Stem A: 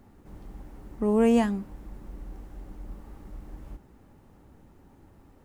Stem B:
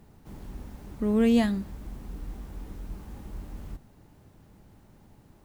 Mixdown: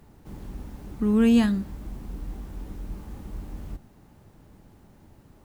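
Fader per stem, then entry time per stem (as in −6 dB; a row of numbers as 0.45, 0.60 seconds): −4.5, +1.0 decibels; 0.00, 0.00 seconds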